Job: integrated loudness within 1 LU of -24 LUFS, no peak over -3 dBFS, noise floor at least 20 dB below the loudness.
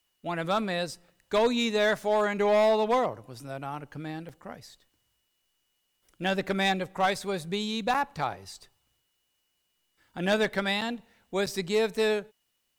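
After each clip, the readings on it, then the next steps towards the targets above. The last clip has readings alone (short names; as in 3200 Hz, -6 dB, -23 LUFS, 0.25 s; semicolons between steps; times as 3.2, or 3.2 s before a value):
clipped 0.7%; flat tops at -18.0 dBFS; dropouts 4; longest dropout 6.3 ms; loudness -28.0 LUFS; peak -18.0 dBFS; loudness target -24.0 LUFS
-> clip repair -18 dBFS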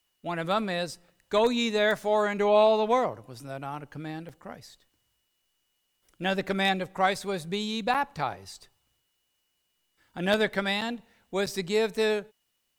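clipped 0.0%; dropouts 4; longest dropout 6.3 ms
-> interpolate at 4.29/7.94/10.81/11.46, 6.3 ms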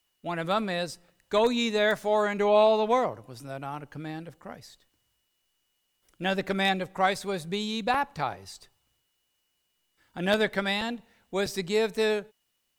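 dropouts 0; loudness -27.0 LUFS; peak -9.0 dBFS; loudness target -24.0 LUFS
-> gain +3 dB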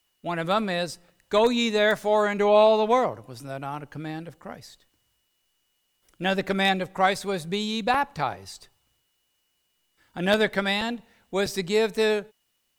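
loudness -24.5 LUFS; peak -6.0 dBFS; noise floor -73 dBFS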